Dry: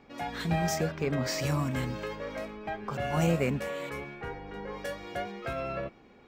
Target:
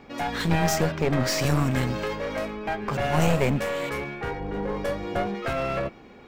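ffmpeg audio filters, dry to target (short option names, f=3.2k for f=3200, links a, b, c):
-filter_complex "[0:a]asettb=1/sr,asplit=3[a][b][c];[a]atrim=end=4.404[d];[b]atrim=start=4.4:end=5.35,asetpts=PTS-STARTPTS,afade=t=in:d=0.004:c=qsin,afade=t=out:st=0.946:d=0.004:c=qsin,tiltshelf=f=840:g=5.5[e];[c]atrim=start=5.346[f];[d][e]acrossfade=d=0.004:c1=hsin:c2=qsin[g];[g][f]acrossfade=d=0.004:c1=qsin:c2=hsin,aeval=exprs='clip(val(0),-1,0.0178)':c=same,volume=8.5dB"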